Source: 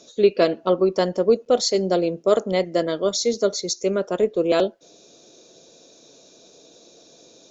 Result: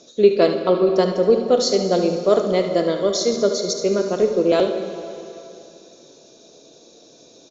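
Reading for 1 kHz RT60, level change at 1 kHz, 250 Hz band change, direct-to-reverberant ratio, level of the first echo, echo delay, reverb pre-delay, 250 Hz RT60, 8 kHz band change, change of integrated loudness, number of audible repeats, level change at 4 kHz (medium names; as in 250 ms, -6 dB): 2.8 s, +2.0 dB, +3.0 dB, 4.5 dB, -10.0 dB, 73 ms, 7 ms, 2.8 s, no reading, +2.5 dB, 1, +1.5 dB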